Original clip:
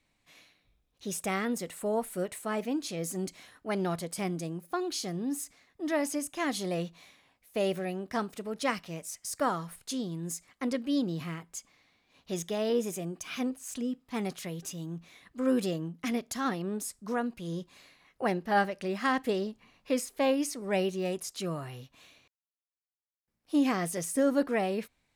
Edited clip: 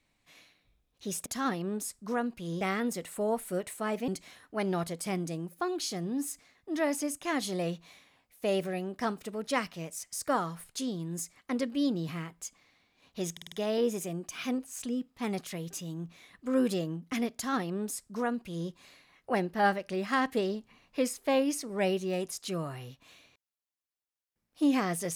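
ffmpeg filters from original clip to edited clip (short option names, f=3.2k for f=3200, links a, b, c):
-filter_complex "[0:a]asplit=8[a][b][c][d][e][f][g][h];[a]atrim=end=1.262[i];[b]atrim=start=16.258:end=17.612[j];[c]atrim=start=1.258:end=2.732[k];[d]atrim=start=3.198:end=12.492[l];[e]atrim=start=12.438:end=12.492[m];[f]atrim=start=12.438:end=12.492[n];[g]atrim=start=12.438:end=12.492[o];[h]atrim=start=12.438[p];[i][j]acrossfade=d=0.004:c1=hsin:c2=hsin[q];[q][k]acrossfade=d=0.004:c1=hsin:c2=hsin[r];[r][l]acrossfade=d=0.004:c1=hsin:c2=hsin[s];[s][m]acrossfade=d=0.004:c1=hsin:c2=hsin[t];[t][n]acrossfade=d=0.004:c1=hsin:c2=hsin[u];[u][o]acrossfade=d=0.004:c1=hsin:c2=hsin[v];[v][p]acrossfade=d=0.004:c1=hsin:c2=hsin"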